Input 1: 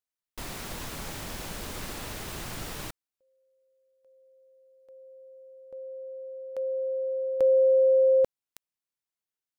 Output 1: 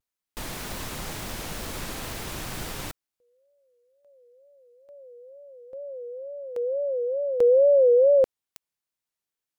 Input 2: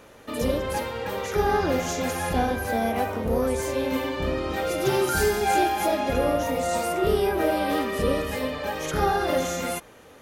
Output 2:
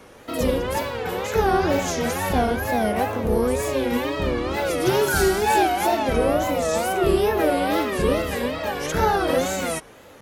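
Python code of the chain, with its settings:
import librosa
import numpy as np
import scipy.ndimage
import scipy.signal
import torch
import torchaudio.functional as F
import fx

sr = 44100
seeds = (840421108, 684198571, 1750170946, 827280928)

y = fx.wow_flutter(x, sr, seeds[0], rate_hz=2.1, depth_cents=150.0)
y = F.gain(torch.from_numpy(y), 3.0).numpy()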